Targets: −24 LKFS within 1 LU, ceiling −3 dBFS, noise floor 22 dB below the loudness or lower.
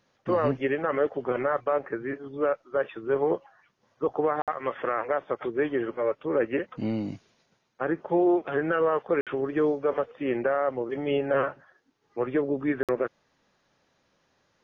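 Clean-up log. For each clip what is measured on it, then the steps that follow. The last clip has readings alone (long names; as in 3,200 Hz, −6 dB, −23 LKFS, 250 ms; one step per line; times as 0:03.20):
number of dropouts 3; longest dropout 57 ms; integrated loudness −28.0 LKFS; sample peak −15.0 dBFS; target loudness −24.0 LKFS
→ repair the gap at 0:04.42/0:09.21/0:12.83, 57 ms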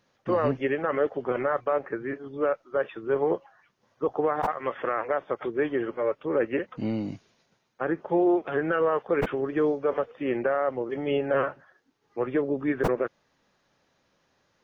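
number of dropouts 0; integrated loudness −27.5 LKFS; sample peak −13.0 dBFS; target loudness −24.0 LKFS
→ level +3.5 dB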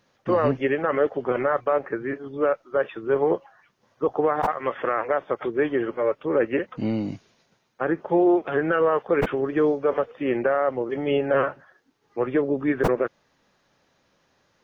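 integrated loudness −24.0 LKFS; sample peak −9.5 dBFS; background noise floor −67 dBFS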